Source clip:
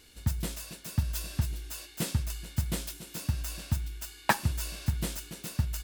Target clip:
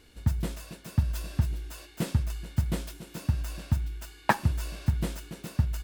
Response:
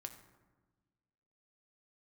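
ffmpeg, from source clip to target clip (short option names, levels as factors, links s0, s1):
-af "highshelf=f=2600:g=-11,volume=1.5"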